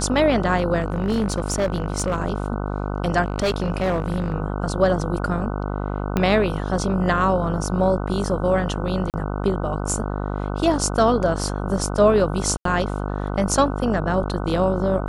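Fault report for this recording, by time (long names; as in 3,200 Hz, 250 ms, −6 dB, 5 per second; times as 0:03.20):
mains buzz 50 Hz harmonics 30 −26 dBFS
0:00.80–0:02.24: clipping −16.5 dBFS
0:03.22–0:04.34: clipping −17 dBFS
0:06.17: click −8 dBFS
0:09.10–0:09.14: drop-out 38 ms
0:12.57–0:12.65: drop-out 83 ms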